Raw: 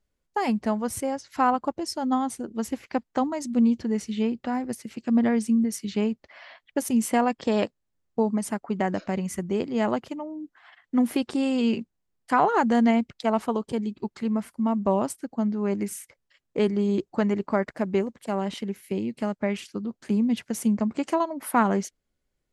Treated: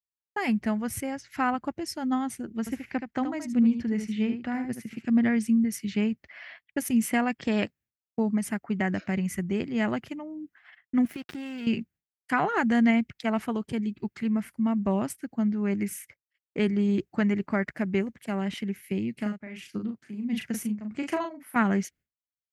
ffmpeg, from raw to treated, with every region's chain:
ffmpeg -i in.wav -filter_complex "[0:a]asettb=1/sr,asplit=3[link_01][link_02][link_03];[link_01]atrim=end=2.594[link_04];[link_02]atrim=start=2.59:end=5.05,asetpts=PTS-STARTPTS,afade=type=in:duration=0.004:curve=qsin,afade=type=out:start_time=2.456:duration=0.004:curve=qsin,lowpass=frequency=2200:poles=1,aemphasis=mode=production:type=cd,aecho=1:1:75:0.376,atrim=end_sample=108486[link_05];[link_03]atrim=start=5.046[link_06];[link_04][link_05]acrossfade=duration=0.004:curve1=hsin:curve2=qsin[link_07];[link_07][link_06]acrossfade=duration=0.004:curve1=qsin:curve2=hsin,asettb=1/sr,asplit=3[link_08][link_09][link_10];[link_08]atrim=end=11.054[link_11];[link_09]atrim=start=11.05:end=11.67,asetpts=PTS-STARTPTS,afade=type=in:duration=0.004:curve=qsin,afade=type=out:start_time=0.616:duration=0.004:curve=qsin,lowpass=9400,acompressor=threshold=-30dB:ratio=4:attack=3.2:release=140:knee=1:detection=peak,aeval=exprs='sgn(val(0))*max(abs(val(0))-0.00708,0)':channel_layout=same[link_12];[link_10]atrim=start=11.666[link_13];[link_11][link_12]acrossfade=duration=0.004:curve1=hsin:curve2=qsin[link_14];[link_14][link_13]acrossfade=duration=0.004:curve1=qsin:curve2=hsin,asettb=1/sr,asplit=3[link_15][link_16][link_17];[link_15]atrim=end=19.134[link_18];[link_16]atrim=start=19.13:end=21.56,asetpts=PTS-STARTPTS,afade=type=in:duration=0.004:curve=qsin,afade=type=out:start_time=2.426:duration=0.004:curve=qsin,tremolo=f=1.5:d=0.82,asplit=2[link_19][link_20];[link_20]adelay=38,volume=-5dB[link_21];[link_19][link_21]amix=inputs=2:normalize=0,atrim=end_sample=107163[link_22];[link_17]atrim=start=21.556[link_23];[link_18][link_22]acrossfade=duration=0.004:curve1=hsin:curve2=qsin[link_24];[link_24][link_23]acrossfade=duration=0.004:curve1=qsin:curve2=hsin,highpass=67,agate=range=-33dB:threshold=-48dB:ratio=3:detection=peak,equalizer=frequency=250:width_type=o:width=1:gain=-4,equalizer=frequency=500:width_type=o:width=1:gain=-10,equalizer=frequency=1000:width_type=o:width=1:gain=-11,equalizer=frequency=2000:width_type=o:width=1:gain=4,equalizer=frequency=4000:width_type=o:width=1:gain=-8,equalizer=frequency=8000:width_type=o:width=1:gain=-8,volume=5dB" out.wav

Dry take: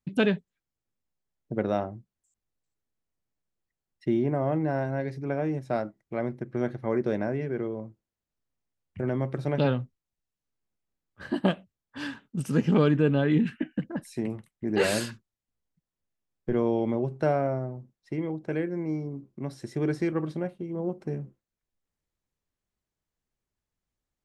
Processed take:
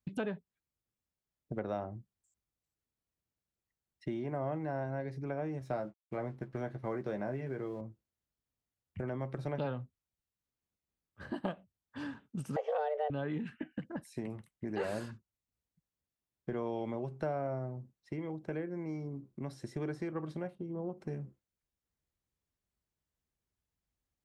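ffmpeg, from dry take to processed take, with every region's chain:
ffmpeg -i in.wav -filter_complex "[0:a]asettb=1/sr,asplit=3[link_01][link_02][link_03];[link_01]atrim=end=5.594[link_04];[link_02]atrim=start=5.59:end=7.81,asetpts=PTS-STARTPTS,afade=type=in:duration=0.004:curve=qsin,afade=type=out:start_time=2.216:duration=0.004:curve=qsin,aeval=exprs='sgn(val(0))*max(abs(val(0))-0.00112,0)':channel_layout=same,asplit=2[link_05][link_06];[link_06]adelay=15,volume=-7.5dB[link_07];[link_05][link_07]amix=inputs=2:normalize=0,atrim=end_sample=97902[link_08];[link_03]atrim=start=7.806[link_09];[link_04][link_08]acrossfade=duration=0.004:curve1=hsin:curve2=qsin[link_10];[link_10][link_09]acrossfade=duration=0.004:curve1=qsin:curve2=hsin,asettb=1/sr,asplit=3[link_11][link_12][link_13];[link_11]atrim=end=12.564[link_14];[link_12]atrim=start=12.56:end=13.1,asetpts=PTS-STARTPTS,afade=type=in:duration=0.004:curve=qsin,afade=type=out:start_time=0.536:duration=0.004:curve=qsin,afreqshift=300,aemphasis=mode=reproduction:type=50fm[link_15];[link_13]atrim=start=13.096[link_16];[link_14][link_15]acrossfade=duration=0.004:curve1=hsin:curve2=qsin[link_17];[link_17][link_16]acrossfade=duration=0.004:curve1=qsin:curve2=hsin,asettb=1/sr,asplit=3[link_18][link_19][link_20];[link_18]atrim=end=20.554[link_21];[link_19]atrim=start=20.55:end=20.97,asetpts=PTS-STARTPTS,afade=type=in:duration=0.004:curve=qsin,afade=type=out:start_time=0.416:duration=0.004:curve=qsin,lowpass=frequency=2900:poles=1,equalizer=frequency=2200:width_type=o:width=0.68:gain=-8.5[link_22];[link_20]atrim=start=20.966[link_23];[link_21][link_22]acrossfade=duration=0.004:curve1=hsin:curve2=qsin[link_24];[link_24][link_23]acrossfade=duration=0.004:curve1=qsin:curve2=hsin,highpass=53,acrossover=split=620|1300[link_25][link_26][link_27];[link_25]acompressor=threshold=-35dB:ratio=4[link_28];[link_26]acompressor=threshold=-33dB:ratio=4[link_29];[link_27]acompressor=threshold=-51dB:ratio=4[link_30];[link_28][link_29][link_30]amix=inputs=3:normalize=0,lowshelf=frequency=79:gain=10,volume=-4dB" out.wav

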